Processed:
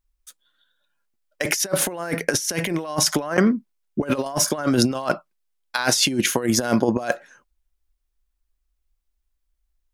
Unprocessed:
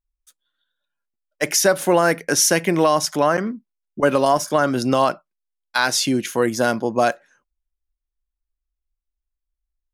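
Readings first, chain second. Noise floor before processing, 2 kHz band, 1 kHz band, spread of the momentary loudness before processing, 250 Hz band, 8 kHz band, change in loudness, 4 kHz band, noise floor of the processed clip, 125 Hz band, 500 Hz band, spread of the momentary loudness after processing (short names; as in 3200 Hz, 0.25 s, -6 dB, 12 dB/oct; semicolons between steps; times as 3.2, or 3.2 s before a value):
-83 dBFS, -3.5 dB, -8.5 dB, 8 LU, +0.5 dB, -1.0 dB, -3.0 dB, +0.5 dB, -75 dBFS, +0.5 dB, -6.0 dB, 10 LU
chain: negative-ratio compressor -23 dBFS, ratio -0.5; gain +2.5 dB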